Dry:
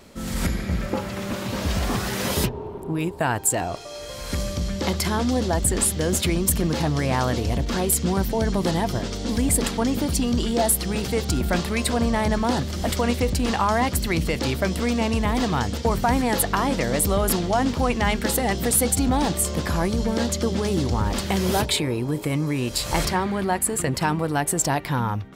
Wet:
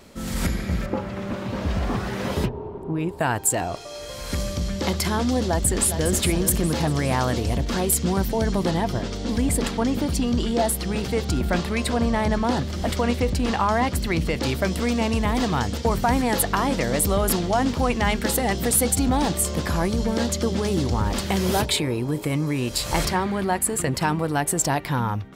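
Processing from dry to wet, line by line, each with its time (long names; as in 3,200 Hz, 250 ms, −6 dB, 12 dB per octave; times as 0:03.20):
0:00.86–0:03.09: low-pass filter 1,700 Hz 6 dB per octave
0:05.45–0:06.14: delay throw 410 ms, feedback 50%, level −9 dB
0:08.63–0:14.43: high-shelf EQ 6,300 Hz −7.5 dB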